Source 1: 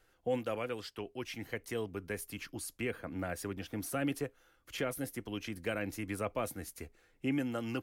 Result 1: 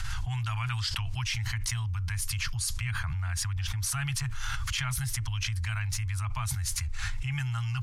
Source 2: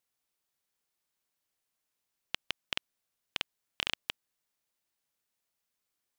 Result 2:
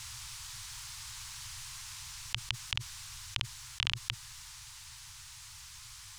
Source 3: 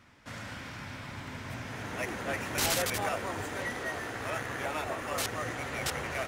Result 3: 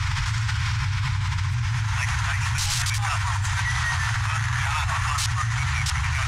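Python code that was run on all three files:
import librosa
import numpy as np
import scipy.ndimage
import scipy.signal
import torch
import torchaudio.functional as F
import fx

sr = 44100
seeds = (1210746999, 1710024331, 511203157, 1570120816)

y = scipy.signal.sosfilt(scipy.signal.ellip(3, 1.0, 40, [120.0, 940.0], 'bandstop', fs=sr, output='sos'), x)
y = fx.bass_treble(y, sr, bass_db=13, treble_db=10)
y = fx.rider(y, sr, range_db=10, speed_s=2.0)
y = np.clip(10.0 ** (12.5 / 20.0) * y, -1.0, 1.0) / 10.0 ** (12.5 / 20.0)
y = fx.air_absorb(y, sr, metres=81.0)
y = fx.env_flatten(y, sr, amount_pct=100)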